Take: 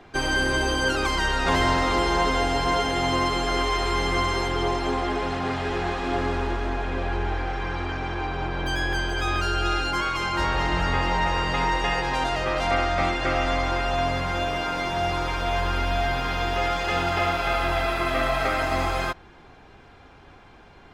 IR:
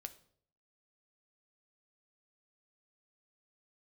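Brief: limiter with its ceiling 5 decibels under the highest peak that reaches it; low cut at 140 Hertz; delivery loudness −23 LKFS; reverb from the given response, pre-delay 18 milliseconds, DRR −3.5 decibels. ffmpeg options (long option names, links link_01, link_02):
-filter_complex "[0:a]highpass=140,alimiter=limit=-15dB:level=0:latency=1,asplit=2[link_01][link_02];[1:a]atrim=start_sample=2205,adelay=18[link_03];[link_02][link_03]afir=irnorm=-1:irlink=0,volume=8dB[link_04];[link_01][link_04]amix=inputs=2:normalize=0,volume=-1.5dB"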